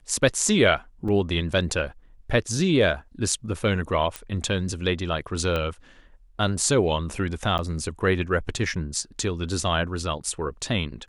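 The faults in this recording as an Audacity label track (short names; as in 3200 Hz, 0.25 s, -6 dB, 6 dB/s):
1.080000	1.080000	gap 4.5 ms
4.160000	4.160000	pop -14 dBFS
5.560000	5.560000	pop -14 dBFS
7.580000	7.590000	gap 9.2 ms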